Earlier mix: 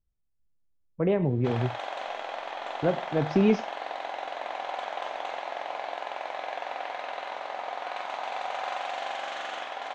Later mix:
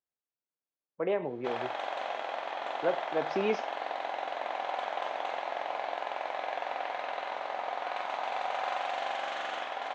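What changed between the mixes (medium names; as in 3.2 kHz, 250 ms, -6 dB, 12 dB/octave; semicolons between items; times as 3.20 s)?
speech: add high-pass 500 Hz 12 dB/octave; master: add treble shelf 5.3 kHz -6.5 dB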